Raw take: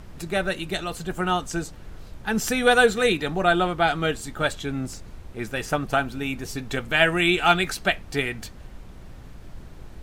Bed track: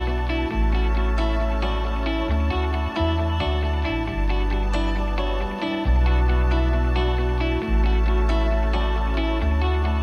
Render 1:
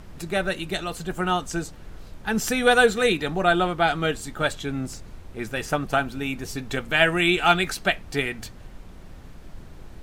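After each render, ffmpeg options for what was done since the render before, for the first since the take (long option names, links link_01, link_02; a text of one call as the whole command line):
ffmpeg -i in.wav -af "bandreject=frequency=60:width_type=h:width=4,bandreject=frequency=120:width_type=h:width=4" out.wav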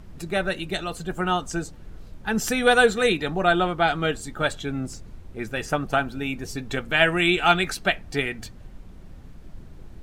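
ffmpeg -i in.wav -af "afftdn=noise_reduction=6:noise_floor=-44" out.wav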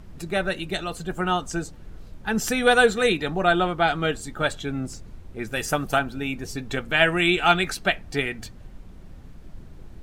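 ffmpeg -i in.wav -filter_complex "[0:a]asettb=1/sr,asplit=3[link_01][link_02][link_03];[link_01]atrim=end=5.524[link_04];[link_02]atrim=start=5.52:end=5.99,asetpts=PTS-STARTPTS,afade=type=in:duration=0.004:curve=qsin,afade=type=out:start_time=0.466:duration=0.004:curve=qsin,aemphasis=mode=production:type=50kf[link_05];[link_03]atrim=start=5.986[link_06];[link_04][link_05]acrossfade=duration=0.004:curve1=hsin:curve2=qsin[link_07];[link_07][link_06]acrossfade=duration=0.004:curve1=qsin:curve2=hsin" out.wav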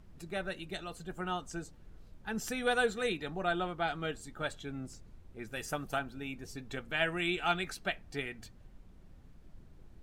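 ffmpeg -i in.wav -af "volume=-12.5dB" out.wav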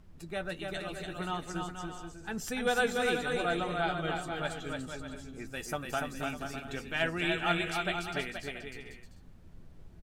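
ffmpeg -i in.wav -filter_complex "[0:a]asplit=2[link_01][link_02];[link_02]adelay=12,volume=-12dB[link_03];[link_01][link_03]amix=inputs=2:normalize=0,aecho=1:1:290|478.5|601|680.7|732.4:0.631|0.398|0.251|0.158|0.1" out.wav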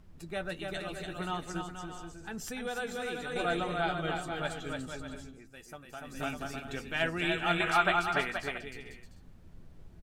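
ffmpeg -i in.wav -filter_complex "[0:a]asettb=1/sr,asplit=3[link_01][link_02][link_03];[link_01]atrim=end=1.614[link_04];[link_02]atrim=start=1.61:end=3.36,asetpts=PTS-STARTPTS,afade=type=in:duration=0.004:curve=qsin,afade=type=out:start_time=1.746:duration=0.004:curve=qsin,acompressor=threshold=-38dB:ratio=2:attack=3.2:release=140:knee=1:detection=peak[link_05];[link_03]atrim=start=3.356[link_06];[link_04][link_05]acrossfade=duration=0.004:curve1=hsin:curve2=qsin[link_07];[link_07][link_06]acrossfade=duration=0.004:curve1=qsin:curve2=hsin,asettb=1/sr,asplit=3[link_08][link_09][link_10];[link_08]atrim=end=7.604[link_11];[link_09]atrim=start=7.6:end=8.58,asetpts=PTS-STARTPTS,afade=type=in:duration=0.004:curve=qsin,afade=type=out:start_time=0.976:duration=0.004:curve=qsin,equalizer=frequency=1100:width=1.1:gain=13[link_12];[link_10]atrim=start=8.576[link_13];[link_11][link_12]acrossfade=duration=0.004:curve1=hsin:curve2=qsin[link_14];[link_14][link_13]acrossfade=duration=0.004:curve1=qsin:curve2=hsin,asplit=3[link_15][link_16][link_17];[link_15]atrim=end=5.41,asetpts=PTS-STARTPTS,afade=type=out:start_time=5.23:duration=0.18:silence=0.266073[link_18];[link_16]atrim=start=5.41:end=6.02,asetpts=PTS-STARTPTS,volume=-11.5dB[link_19];[link_17]atrim=start=6.02,asetpts=PTS-STARTPTS,afade=type=in:duration=0.18:silence=0.266073[link_20];[link_18][link_19][link_20]concat=n=3:v=0:a=1" out.wav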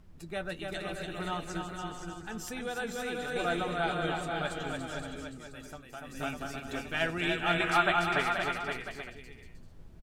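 ffmpeg -i in.wav -af "aecho=1:1:519:0.501" out.wav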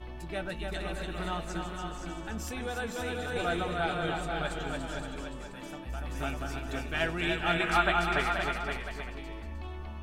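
ffmpeg -i in.wav -i bed.wav -filter_complex "[1:a]volume=-19.5dB[link_01];[0:a][link_01]amix=inputs=2:normalize=0" out.wav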